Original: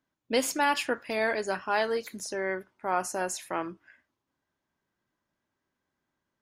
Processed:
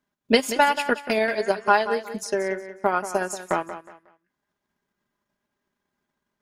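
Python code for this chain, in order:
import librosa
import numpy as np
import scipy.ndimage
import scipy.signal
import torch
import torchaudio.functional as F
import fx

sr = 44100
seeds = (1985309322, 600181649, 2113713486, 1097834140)

p1 = x + 0.46 * np.pad(x, (int(4.9 * sr / 1000.0), 0))[:len(x)]
p2 = fx.transient(p1, sr, attack_db=10, sustain_db=-8)
p3 = p2 + fx.echo_feedback(p2, sr, ms=182, feedback_pct=28, wet_db=-12, dry=0)
y = p3 * 10.0 ** (1.5 / 20.0)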